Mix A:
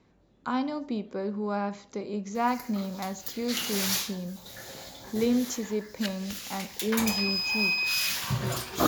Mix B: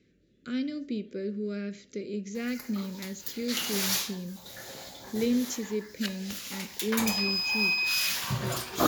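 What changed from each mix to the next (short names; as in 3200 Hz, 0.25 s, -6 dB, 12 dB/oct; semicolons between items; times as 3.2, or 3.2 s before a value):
speech: add Chebyshev band-stop 430–1900 Hz, order 2; master: add low shelf 96 Hz -6 dB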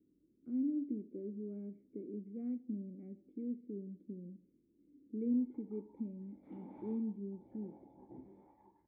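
background: entry +2.95 s; master: add vocal tract filter u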